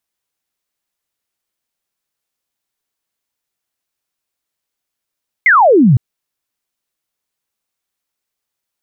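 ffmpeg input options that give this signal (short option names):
-f lavfi -i "aevalsrc='0.562*clip(t/0.002,0,1)*clip((0.51-t)/0.002,0,1)*sin(2*PI*2200*0.51/log(110/2200)*(exp(log(110/2200)*t/0.51)-1))':d=0.51:s=44100"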